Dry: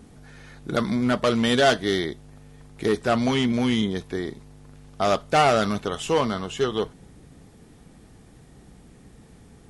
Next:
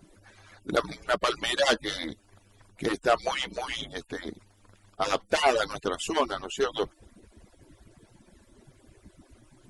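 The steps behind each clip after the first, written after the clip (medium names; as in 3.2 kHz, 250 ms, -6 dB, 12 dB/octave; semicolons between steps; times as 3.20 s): harmonic-percussive separation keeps percussive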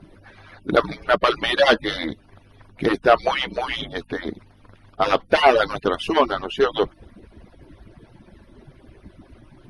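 mains buzz 50 Hz, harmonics 5, -65 dBFS -4 dB/octave; boxcar filter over 6 samples; trim +8.5 dB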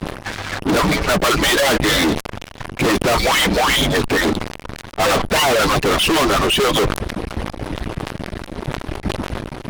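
fuzz box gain 40 dB, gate -46 dBFS; decay stretcher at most 74 dB/s; trim -1 dB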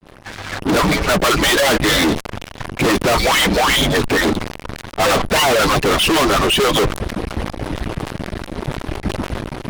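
fade-in on the opening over 0.77 s; saturation -13.5 dBFS, distortion -22 dB; trim +3 dB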